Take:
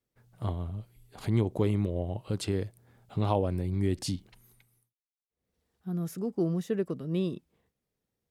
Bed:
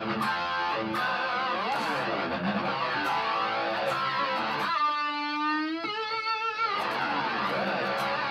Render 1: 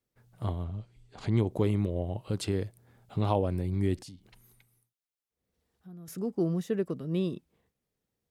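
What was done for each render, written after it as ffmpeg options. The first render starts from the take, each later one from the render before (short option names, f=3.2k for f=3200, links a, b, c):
-filter_complex "[0:a]asettb=1/sr,asplit=3[a][b][c];[a]atrim=end=0.644[d];[b]atrim=start=0.64:end=1.38,asetpts=PTS-STARTPTS,afade=t=in:d=0.004:c=qsin,afade=t=out:st=0.736:d=0.004:c=qsin,lowpass=f=7.5k:w=0.5412,lowpass=f=7.5k:w=1.3066[e];[c]atrim=start=1.376[f];[d][e]acrossfade=d=0.004:c1=hsin:c2=qsin[g];[g][f]acrossfade=d=0.004:c1=qsin:c2=hsin,asettb=1/sr,asplit=3[h][i][j];[h]atrim=end=3.994[k];[i]atrim=start=3.99:end=6.08,asetpts=PTS-STARTPTS,afade=t=in:d=0.004:c=qsin,afade=t=out:st=2.086:d=0.004:c=qsin,acompressor=threshold=-49dB:ratio=3:attack=3.2:release=140:knee=1:detection=peak[l];[j]atrim=start=6.076[m];[k][l]acrossfade=d=0.004:c1=hsin:c2=qsin[n];[n][m]acrossfade=d=0.004:c1=qsin:c2=hsin"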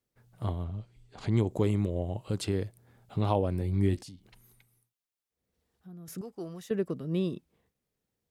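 -filter_complex "[0:a]asettb=1/sr,asplit=3[a][b][c];[a]atrim=end=1.304[d];[b]atrim=start=1.3:end=2.39,asetpts=PTS-STARTPTS,afade=t=in:d=0.004:c=qsin,afade=t=out:st=1.086:d=0.004:c=qsin,equalizer=f=7.3k:w=4.4:g=11[e];[c]atrim=start=2.386[f];[d][e]acrossfade=d=0.004:c1=hsin:c2=qsin[g];[g][f]acrossfade=d=0.004:c1=qsin:c2=hsin,asettb=1/sr,asplit=3[h][i][j];[h]atrim=end=3.594[k];[i]atrim=start=3.59:end=4.03,asetpts=PTS-STARTPTS,afade=t=in:d=0.004:c=qsin,afade=t=out:st=0.436:d=0.004:c=qsin,asplit=2[l][m];[m]adelay=20,volume=-8.5dB[n];[l][n]amix=inputs=2:normalize=0,atrim=end_sample=19404[o];[j]atrim=start=4.026[p];[k][o]acrossfade=d=0.004:c1=hsin:c2=qsin[q];[q][p]acrossfade=d=0.004:c1=qsin:c2=hsin,asettb=1/sr,asplit=3[r][s][t];[r]atrim=end=6.214[u];[s]atrim=start=6.21:end=6.71,asetpts=PTS-STARTPTS,afade=t=in:d=0.004:c=qsin,afade=t=out:st=0.496:d=0.004:c=qsin,equalizer=f=210:t=o:w=2.7:g=-14.5[v];[t]atrim=start=6.706[w];[u][v]acrossfade=d=0.004:c1=hsin:c2=qsin[x];[x][w]acrossfade=d=0.004:c1=qsin:c2=hsin"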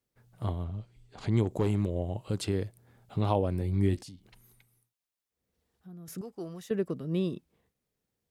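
-filter_complex "[0:a]asettb=1/sr,asplit=3[a][b][c];[a]atrim=end=1.434[d];[b]atrim=start=1.43:end=1.94,asetpts=PTS-STARTPTS,afade=t=in:d=0.004:c=qsin,afade=t=out:st=0.506:d=0.004:c=qsin,volume=20dB,asoftclip=hard,volume=-20dB[e];[c]atrim=start=1.936[f];[d][e]acrossfade=d=0.004:c1=hsin:c2=qsin[g];[g][f]acrossfade=d=0.004:c1=qsin:c2=hsin"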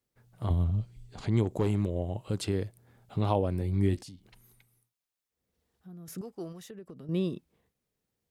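-filter_complex "[0:a]asettb=1/sr,asplit=3[a][b][c];[a]atrim=end=0.504[d];[b]atrim=start=0.5:end=1.21,asetpts=PTS-STARTPTS,afade=t=in:d=0.004:c=qsin,afade=t=out:st=0.706:d=0.004:c=qsin,bass=f=250:g=9,treble=f=4k:g=6[e];[c]atrim=start=1.206[f];[d][e]acrossfade=d=0.004:c1=hsin:c2=qsin[g];[g][f]acrossfade=d=0.004:c1=qsin:c2=hsin,asettb=1/sr,asplit=3[h][i][j];[h]atrim=end=1.854[k];[i]atrim=start=1.85:end=2.37,asetpts=PTS-STARTPTS,afade=t=in:d=0.004:c=qsin,afade=t=out:st=0.516:d=0.004:c=qsin,bandreject=f=4.5k:w=13[l];[j]atrim=start=2.366[m];[k][l]acrossfade=d=0.004:c1=hsin:c2=qsin[n];[n][m]acrossfade=d=0.004:c1=qsin:c2=hsin,asettb=1/sr,asplit=3[o][p][q];[o]atrim=end=6.524[r];[p]atrim=start=6.52:end=7.09,asetpts=PTS-STARTPTS,afade=t=in:d=0.004:c=qsin,afade=t=out:st=0.566:d=0.004:c=qsin,acompressor=threshold=-42dB:ratio=8:attack=3.2:release=140:knee=1:detection=peak[s];[q]atrim=start=7.086[t];[r][s]acrossfade=d=0.004:c1=hsin:c2=qsin[u];[u][t]acrossfade=d=0.004:c1=qsin:c2=hsin"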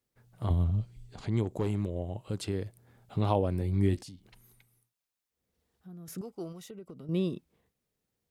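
-filter_complex "[0:a]asettb=1/sr,asplit=3[a][b][c];[a]atrim=end=6.234[d];[b]atrim=start=6.23:end=7.36,asetpts=PTS-STARTPTS,afade=t=in:d=0.004:c=qsin,afade=t=out:st=1.126:d=0.004:c=qsin,asuperstop=centerf=1700:order=20:qfactor=6.1[e];[c]atrim=start=7.356[f];[d][e]acrossfade=d=0.004:c1=hsin:c2=qsin[g];[g][f]acrossfade=d=0.004:c1=qsin:c2=hsin,asplit=3[h][i][j];[h]atrim=end=1.162[k];[i]atrim=start=1.158:end=2.662,asetpts=PTS-STARTPTS,volume=-3dB[l];[j]atrim=start=2.658[m];[k][l]acrossfade=d=0.004:c1=hsin:c2=hsin[n];[n][m]acrossfade=d=0.004:c1=hsin:c2=hsin"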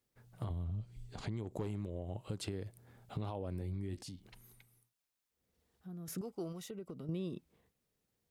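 -af "alimiter=limit=-24dB:level=0:latency=1:release=150,acompressor=threshold=-36dB:ratio=6"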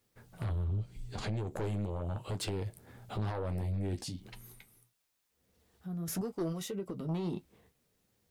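-af "aeval=exprs='0.0473*sin(PI/2*2.51*val(0)/0.0473)':c=same,flanger=delay=9.3:depth=3.5:regen=-44:speed=1.6:shape=sinusoidal"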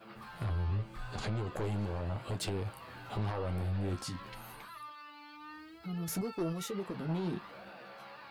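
-filter_complex "[1:a]volume=-21.5dB[a];[0:a][a]amix=inputs=2:normalize=0"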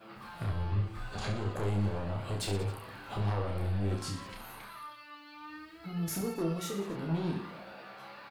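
-af "aecho=1:1:30|69|119.7|185.6|271.3:0.631|0.398|0.251|0.158|0.1"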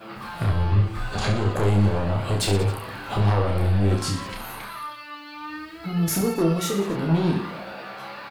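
-af "volume=11.5dB"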